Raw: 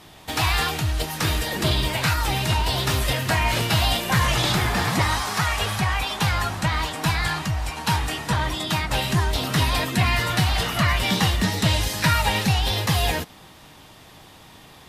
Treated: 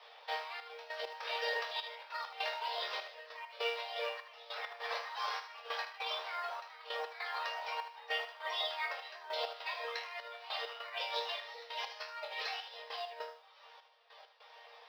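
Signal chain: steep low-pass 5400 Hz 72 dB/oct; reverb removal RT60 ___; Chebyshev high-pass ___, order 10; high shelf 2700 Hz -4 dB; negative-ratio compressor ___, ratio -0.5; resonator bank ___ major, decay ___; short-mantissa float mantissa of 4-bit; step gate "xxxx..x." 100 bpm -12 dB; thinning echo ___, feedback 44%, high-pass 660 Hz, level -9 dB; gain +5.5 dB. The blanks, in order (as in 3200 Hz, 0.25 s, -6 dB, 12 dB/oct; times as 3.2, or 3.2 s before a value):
0.83 s, 430 Hz, -32 dBFS, D#2, 0.43 s, 77 ms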